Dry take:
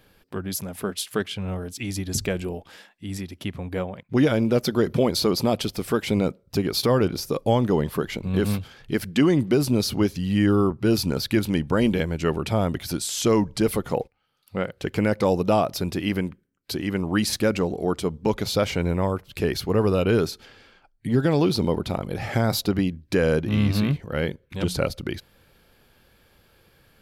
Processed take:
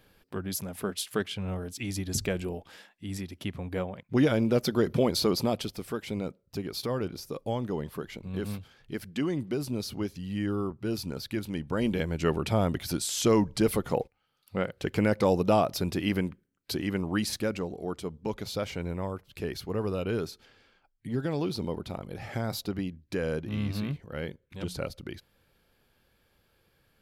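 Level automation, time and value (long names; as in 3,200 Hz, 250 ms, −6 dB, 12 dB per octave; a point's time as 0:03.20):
0:05.33 −4 dB
0:05.97 −11 dB
0:11.50 −11 dB
0:12.23 −3 dB
0:16.76 −3 dB
0:17.69 −10 dB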